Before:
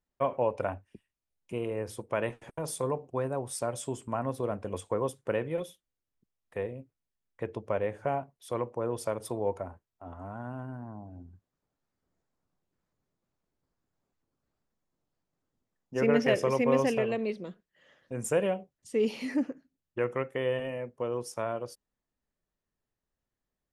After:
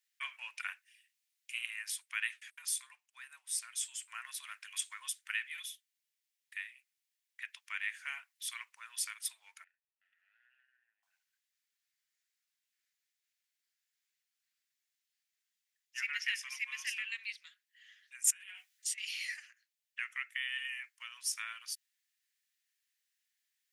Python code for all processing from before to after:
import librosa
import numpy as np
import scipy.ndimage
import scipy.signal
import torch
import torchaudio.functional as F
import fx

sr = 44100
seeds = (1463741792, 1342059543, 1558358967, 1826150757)

y = fx.chain(x, sr, fx.halfwave_gain(db=-3.0),
    fx.vowel_filter(vowel='e'), at=(9.64, 11.03))
y = fx.chain(y, sr, fx.doubler(ms=15.0, db=-4),
    fx.over_compress(threshold_db=-38.0, ratio=-1.0), at=(18.27, 18.98))
y = scipy.signal.sosfilt(scipy.signal.butter(6, 1800.0, 'highpass', fs=sr, output='sos'), y)
y = fx.rider(y, sr, range_db=5, speed_s=0.5)
y = y * 10.0 ** (5.5 / 20.0)